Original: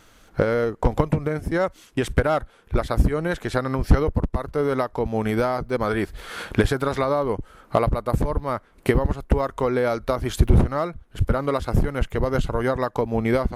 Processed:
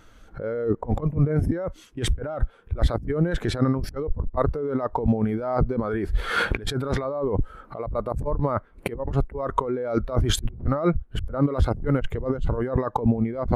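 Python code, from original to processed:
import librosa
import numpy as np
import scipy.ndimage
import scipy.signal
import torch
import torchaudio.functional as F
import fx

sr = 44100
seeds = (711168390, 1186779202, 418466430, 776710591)

y = fx.over_compress(x, sr, threshold_db=-30.0, ratio=-1.0)
y = fx.spectral_expand(y, sr, expansion=1.5)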